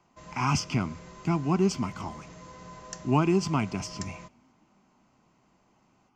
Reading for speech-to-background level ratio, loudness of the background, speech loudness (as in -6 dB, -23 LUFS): 17.0 dB, -45.5 LUFS, -28.5 LUFS